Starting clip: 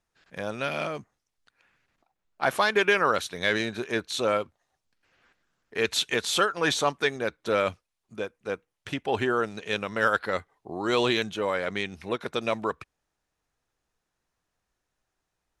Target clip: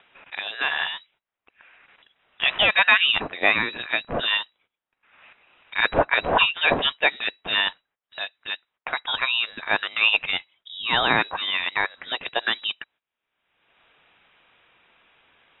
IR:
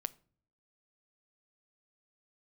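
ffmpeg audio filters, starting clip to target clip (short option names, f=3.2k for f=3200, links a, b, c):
-af "agate=range=-19dB:threshold=-58dB:ratio=16:detection=peak,highpass=f=550:p=1,acompressor=mode=upward:threshold=-35dB:ratio=2.5,afreqshift=-230,crystalizer=i=9:c=0,lowpass=f=3.3k:t=q:w=0.5098,lowpass=f=3.3k:t=q:w=0.6013,lowpass=f=3.3k:t=q:w=0.9,lowpass=f=3.3k:t=q:w=2.563,afreqshift=-3900"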